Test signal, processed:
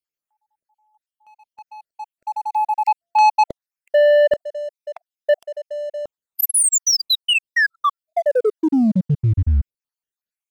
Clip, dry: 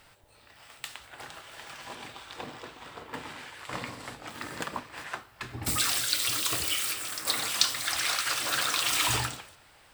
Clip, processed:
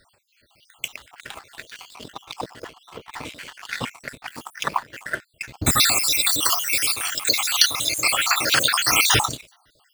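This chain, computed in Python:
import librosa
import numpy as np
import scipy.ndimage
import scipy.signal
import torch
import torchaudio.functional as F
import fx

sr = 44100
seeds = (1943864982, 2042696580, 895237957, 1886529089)

y = fx.spec_dropout(x, sr, seeds[0], share_pct=63)
y = fx.leveller(y, sr, passes=2)
y = F.gain(torch.from_numpy(y), 6.0).numpy()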